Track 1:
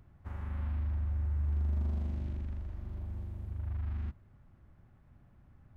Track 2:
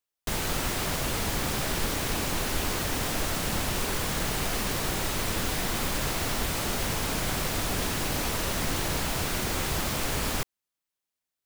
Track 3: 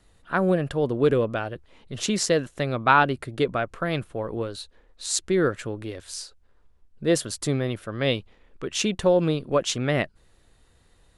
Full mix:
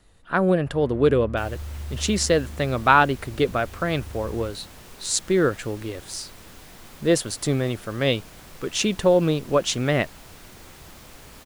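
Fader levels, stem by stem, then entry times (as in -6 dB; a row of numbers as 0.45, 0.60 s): -2.0, -16.5, +2.0 dB; 0.40, 1.10, 0.00 s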